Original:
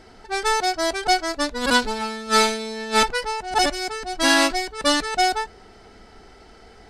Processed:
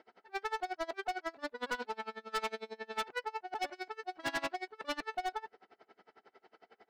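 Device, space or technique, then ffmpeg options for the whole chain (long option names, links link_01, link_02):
helicopter radio: -af "highpass=370,lowpass=2700,aeval=exprs='val(0)*pow(10,-29*(0.5-0.5*cos(2*PI*11*n/s))/20)':channel_layout=same,asoftclip=type=hard:threshold=-24.5dB,volume=-6dB"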